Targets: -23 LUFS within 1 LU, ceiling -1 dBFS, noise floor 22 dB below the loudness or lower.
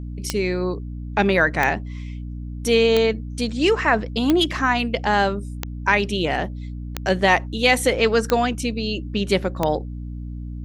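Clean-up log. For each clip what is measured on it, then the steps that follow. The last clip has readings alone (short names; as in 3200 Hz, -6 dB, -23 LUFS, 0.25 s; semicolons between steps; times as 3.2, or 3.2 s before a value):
clicks 8; hum 60 Hz; harmonics up to 300 Hz; hum level -29 dBFS; loudness -21.0 LUFS; peak -2.5 dBFS; loudness target -23.0 LUFS
-> de-click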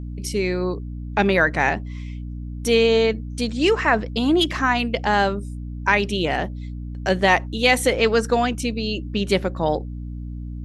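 clicks 0; hum 60 Hz; harmonics up to 300 Hz; hum level -29 dBFS
-> de-hum 60 Hz, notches 5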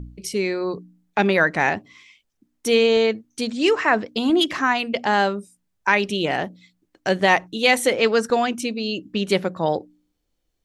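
hum none; loudness -21.0 LUFS; peak -2.5 dBFS; loudness target -23.0 LUFS
-> gain -2 dB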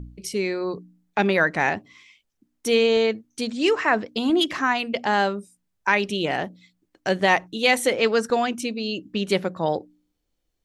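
loudness -23.0 LUFS; peak -4.5 dBFS; noise floor -76 dBFS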